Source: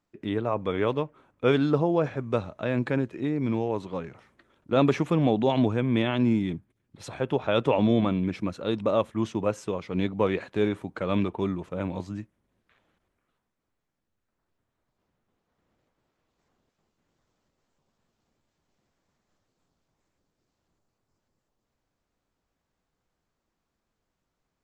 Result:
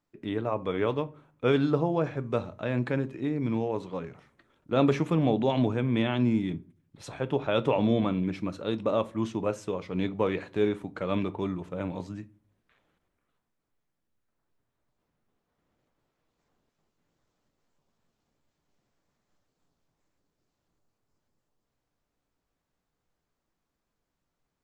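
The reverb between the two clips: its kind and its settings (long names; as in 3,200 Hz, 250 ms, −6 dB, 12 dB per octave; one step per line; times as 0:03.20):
rectangular room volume 170 cubic metres, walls furnished, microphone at 0.36 metres
level −2.5 dB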